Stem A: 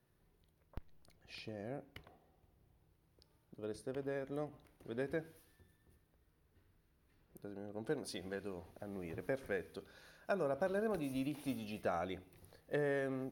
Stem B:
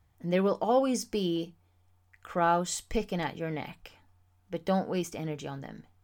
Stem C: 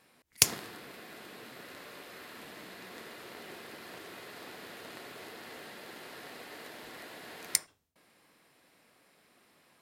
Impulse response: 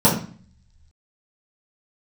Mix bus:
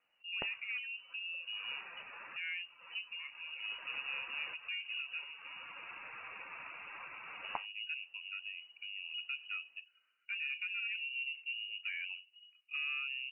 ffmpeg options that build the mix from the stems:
-filter_complex "[0:a]equalizer=f=110:w=4.7:g=12,asoftclip=type=tanh:threshold=-33.5dB,volume=0.5dB[a];[1:a]acontrast=56,asoftclip=type=hard:threshold=-15.5dB,volume=-19.5dB,asplit=2[b][c];[2:a]volume=1dB[d];[c]apad=whole_len=432688[e];[d][e]sidechaincompress=threshold=-50dB:ratio=8:attack=49:release=419[f];[a][b]amix=inputs=2:normalize=0,lowpass=1.4k,alimiter=level_in=9.5dB:limit=-24dB:level=0:latency=1:release=246,volume=-9.5dB,volume=0dB[g];[f][g]amix=inputs=2:normalize=0,afftdn=nr=15:nf=-49,lowpass=f=2.6k:t=q:w=0.5098,lowpass=f=2.6k:t=q:w=0.6013,lowpass=f=2.6k:t=q:w=0.9,lowpass=f=2.6k:t=q:w=2.563,afreqshift=-3000"

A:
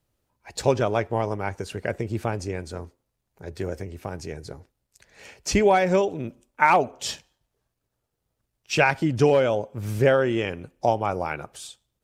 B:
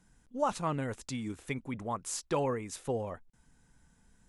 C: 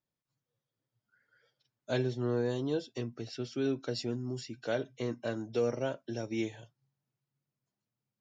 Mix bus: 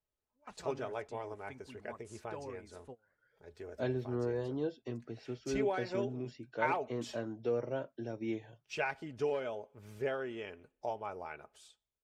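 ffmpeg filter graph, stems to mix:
-filter_complex "[0:a]equalizer=f=180:t=o:w=0.95:g=-8.5,aecho=1:1:4.7:0.42,volume=-11dB,asplit=2[a][b];[1:a]volume=-11dB[c];[2:a]lowpass=f=2.2k:p=1,adelay=1900,volume=1.5dB[d];[b]apad=whole_len=193538[e];[c][e]sidechaingate=range=-27dB:threshold=-57dB:ratio=16:detection=peak[f];[a][f][d]amix=inputs=3:normalize=0,highshelf=f=4.9k:g=-8,flanger=delay=1.9:depth=1.3:regen=-80:speed=0.91:shape=triangular,lowshelf=f=110:g=-4.5"

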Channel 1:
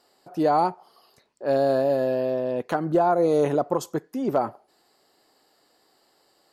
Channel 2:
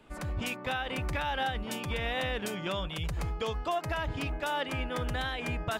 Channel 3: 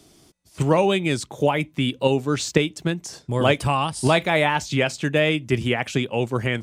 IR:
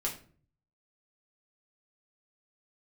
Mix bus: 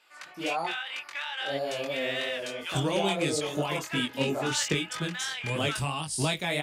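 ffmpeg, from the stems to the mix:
-filter_complex "[0:a]flanger=delay=17:depth=6.4:speed=1.7,volume=-6dB[a];[1:a]highpass=1.4k,adynamicsmooth=sensitivity=2:basefreq=4.3k,volume=3dB[b];[2:a]acrossover=split=440|3000[c][d][e];[d]acompressor=threshold=-29dB:ratio=2[f];[c][f][e]amix=inputs=3:normalize=0,adelay=2150,volume=-6dB[g];[a][b][g]amix=inputs=3:normalize=0,highshelf=f=2.5k:g=10,flanger=delay=19:depth=3.9:speed=3"

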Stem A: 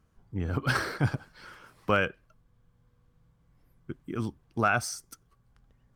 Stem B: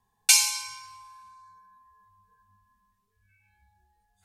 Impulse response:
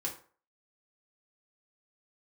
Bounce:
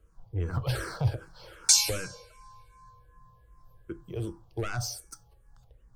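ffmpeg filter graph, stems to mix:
-filter_complex "[0:a]equalizer=f=250:t=o:w=1:g=-12,equalizer=f=500:t=o:w=1:g=7,equalizer=f=2k:t=o:w=1:g=-7,asoftclip=type=tanh:threshold=-24dB,lowshelf=f=82:g=9.5,volume=2.5dB,asplit=3[a][b][c];[b]volume=-8.5dB[d];[1:a]adelay=1400,volume=-3dB,asplit=2[e][f];[f]volume=-3dB[g];[c]apad=whole_len=248784[h];[e][h]sidechaincompress=threshold=-34dB:ratio=8:attack=16:release=703[i];[2:a]atrim=start_sample=2205[j];[d][g]amix=inputs=2:normalize=0[k];[k][j]afir=irnorm=-1:irlink=0[l];[a][i][l]amix=inputs=3:normalize=0,acrossover=split=200|3000[m][n][o];[n]acompressor=threshold=-31dB:ratio=6[p];[m][p][o]amix=inputs=3:normalize=0,asplit=2[q][r];[r]afreqshift=-2.6[s];[q][s]amix=inputs=2:normalize=1"

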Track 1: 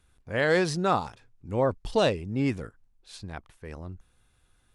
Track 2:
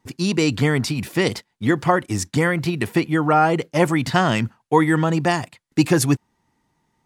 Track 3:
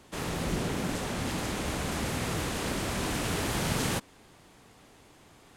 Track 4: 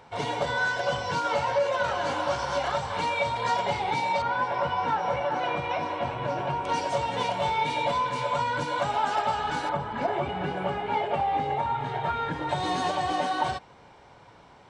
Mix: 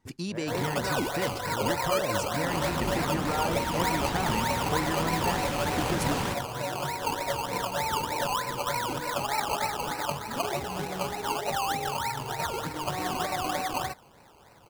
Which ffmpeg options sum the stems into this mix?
-filter_complex "[0:a]lowpass=1.3k,volume=-9.5dB[a];[1:a]acompressor=threshold=-31dB:ratio=2,volume=-5.5dB,asplit=2[b][c];[2:a]highshelf=f=6.3k:g=-10.5,adelay=2350,volume=-1dB[d];[3:a]acrusher=samples=19:mix=1:aa=0.000001:lfo=1:lforange=11.4:lforate=3.3,adelay=350,volume=-3dB[e];[c]apad=whole_len=209445[f];[a][f]sidechaincompress=threshold=-34dB:ratio=8:attack=16:release=148[g];[g][b][d][e]amix=inputs=4:normalize=0"

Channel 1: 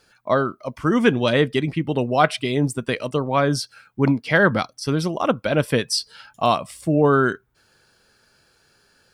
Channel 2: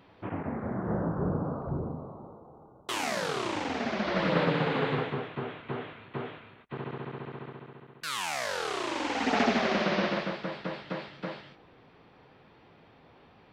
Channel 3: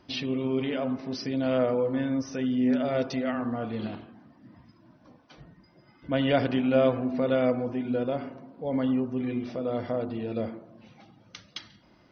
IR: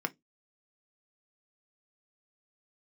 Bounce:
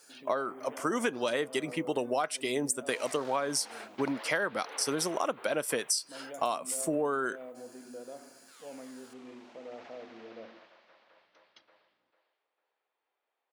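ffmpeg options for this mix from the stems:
-filter_complex "[0:a]highshelf=f=5.3k:t=q:w=1.5:g=9.5,volume=-2dB,asplit=2[a][b];[1:a]highpass=500,volume=-7dB,asplit=2[c][d];[d]volume=-18.5dB[e];[2:a]tiltshelf=f=1.2k:g=5,aeval=exprs='val(0)+0.00398*(sin(2*PI*60*n/s)+sin(2*PI*2*60*n/s)/2+sin(2*PI*3*60*n/s)/3+sin(2*PI*4*60*n/s)/4+sin(2*PI*5*60*n/s)/5)':c=same,volume=-15.5dB[f];[b]apad=whole_len=596540[g];[c][g]sidechaingate=range=-33dB:threshold=-48dB:ratio=16:detection=peak[h];[h][f]amix=inputs=2:normalize=0,agate=range=-10dB:threshold=-57dB:ratio=16:detection=peak,alimiter=level_in=9.5dB:limit=-24dB:level=0:latency=1:release=79,volume=-9.5dB,volume=0dB[i];[e]aecho=0:1:448|896|1344|1792:1|0.31|0.0961|0.0298[j];[a][i][j]amix=inputs=3:normalize=0,highpass=380,acompressor=threshold=-26dB:ratio=16"

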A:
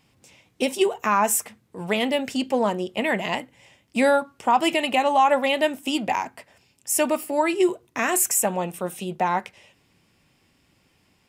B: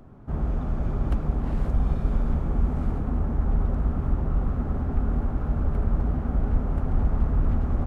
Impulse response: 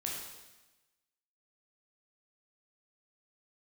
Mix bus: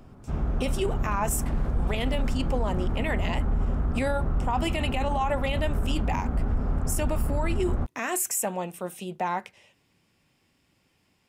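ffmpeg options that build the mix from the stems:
-filter_complex "[0:a]volume=-5dB[a];[1:a]equalizer=f=1.6k:w=1.5:g=2.5,volume=-2dB,asplit=2[b][c];[c]volume=-15.5dB[d];[2:a]atrim=start_sample=2205[e];[d][e]afir=irnorm=-1:irlink=0[f];[a][b][f]amix=inputs=3:normalize=0,alimiter=limit=-17.5dB:level=0:latency=1:release=24"

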